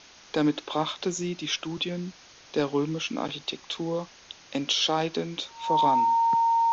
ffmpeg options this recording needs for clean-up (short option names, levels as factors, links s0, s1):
-af "bandreject=f=920:w=30,afwtdn=0.0045"